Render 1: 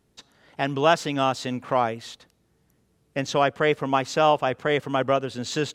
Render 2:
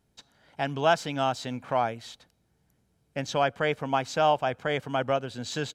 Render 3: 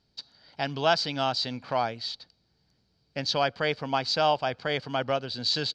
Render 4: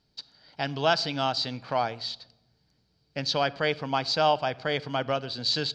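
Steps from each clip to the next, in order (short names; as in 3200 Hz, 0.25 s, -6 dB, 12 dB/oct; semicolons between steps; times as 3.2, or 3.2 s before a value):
comb 1.3 ms, depth 30%; gain -4.5 dB
synth low-pass 4600 Hz, resonance Q 8.7; gain -1.5 dB
shoebox room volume 3800 m³, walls furnished, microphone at 0.47 m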